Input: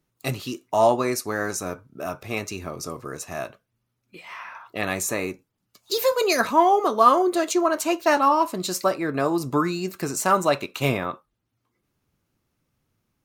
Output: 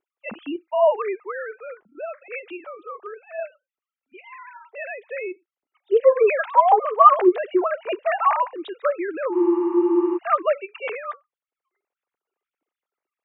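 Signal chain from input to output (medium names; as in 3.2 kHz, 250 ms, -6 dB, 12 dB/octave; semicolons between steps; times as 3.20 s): formants replaced by sine waves; spectral freeze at 9.36 s, 0.80 s; trim +1 dB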